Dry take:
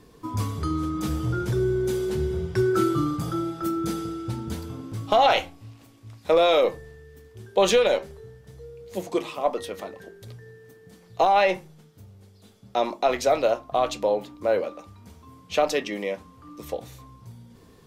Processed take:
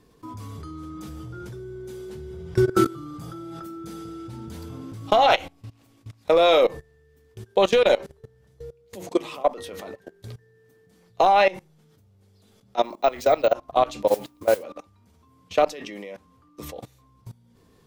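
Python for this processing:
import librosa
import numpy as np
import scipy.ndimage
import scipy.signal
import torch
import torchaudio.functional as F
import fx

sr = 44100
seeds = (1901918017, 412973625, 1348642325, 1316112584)

y = fx.level_steps(x, sr, step_db=21)
y = fx.resample_bad(y, sr, factor=2, down='none', up='hold', at=(12.83, 13.53))
y = fx.mod_noise(y, sr, seeds[0], snr_db=19, at=(14.07, 14.62), fade=0.02)
y = F.gain(torch.from_numpy(y), 5.0).numpy()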